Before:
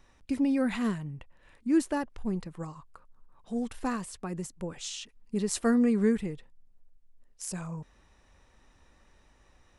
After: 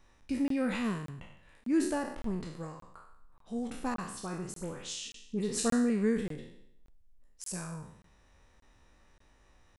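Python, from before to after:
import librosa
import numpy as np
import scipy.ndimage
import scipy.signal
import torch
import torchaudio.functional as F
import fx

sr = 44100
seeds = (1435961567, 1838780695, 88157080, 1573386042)

y = fx.spec_trails(x, sr, decay_s=0.71)
y = fx.dispersion(y, sr, late='highs', ms=52.0, hz=2500.0, at=(3.94, 5.9))
y = fx.buffer_crackle(y, sr, first_s=0.48, period_s=0.58, block=1024, kind='zero')
y = F.gain(torch.from_numpy(y), -4.0).numpy()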